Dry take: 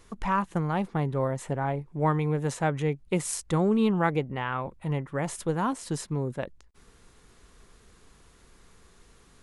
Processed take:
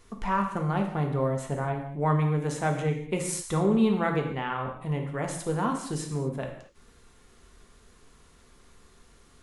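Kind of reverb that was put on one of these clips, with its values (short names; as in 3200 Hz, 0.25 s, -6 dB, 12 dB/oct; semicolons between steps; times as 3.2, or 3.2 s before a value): non-linear reverb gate 0.27 s falling, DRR 2.5 dB; gain -2 dB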